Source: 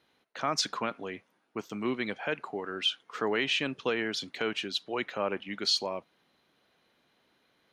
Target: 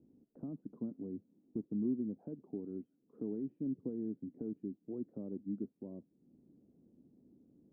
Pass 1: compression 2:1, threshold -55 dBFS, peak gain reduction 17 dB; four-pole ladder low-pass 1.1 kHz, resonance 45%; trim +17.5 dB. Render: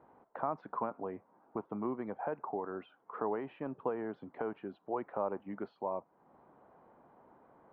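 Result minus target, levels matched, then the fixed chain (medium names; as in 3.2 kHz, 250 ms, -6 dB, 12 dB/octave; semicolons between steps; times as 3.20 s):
250 Hz band -6.5 dB
compression 2:1, threshold -55 dBFS, peak gain reduction 17 dB; four-pole ladder low-pass 320 Hz, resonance 45%; trim +17.5 dB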